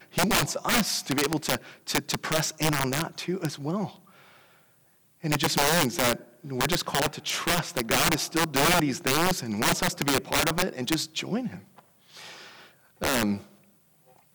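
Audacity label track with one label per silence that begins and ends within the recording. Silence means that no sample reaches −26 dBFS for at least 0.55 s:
3.850000	5.250000	silence
11.470000	13.020000	silence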